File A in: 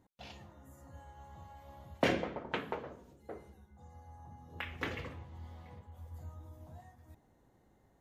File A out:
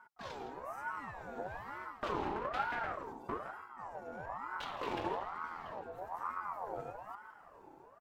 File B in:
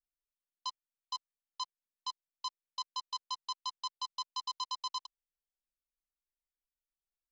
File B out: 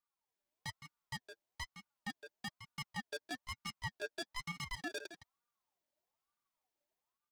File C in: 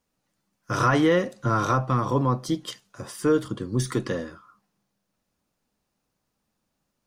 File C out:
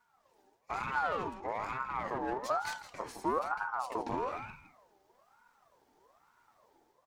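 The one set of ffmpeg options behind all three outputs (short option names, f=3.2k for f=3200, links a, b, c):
-filter_complex "[0:a]flanger=delay=4:depth=4.8:regen=19:speed=0.38:shape=sinusoidal,equalizer=f=100:t=o:w=0.67:g=11,equalizer=f=250:t=o:w=0.67:g=4,equalizer=f=1k:t=o:w=0.67:g=3,equalizer=f=10k:t=o:w=0.67:g=-4,areverse,acompressor=threshold=-36dB:ratio=10,areverse,alimiter=level_in=12dB:limit=-24dB:level=0:latency=1:release=122,volume=-12dB,dynaudnorm=f=120:g=5:m=5dB,aeval=exprs='clip(val(0),-1,0.00501)':c=same,equalizer=f=290:t=o:w=0.62:g=12.5,asplit=2[a][b];[b]adelay=163.3,volume=-10dB,highshelf=f=4k:g=-3.67[c];[a][c]amix=inputs=2:normalize=0,aeval=exprs='val(0)*sin(2*PI*890*n/s+890*0.35/1.1*sin(2*PI*1.1*n/s))':c=same,volume=4.5dB"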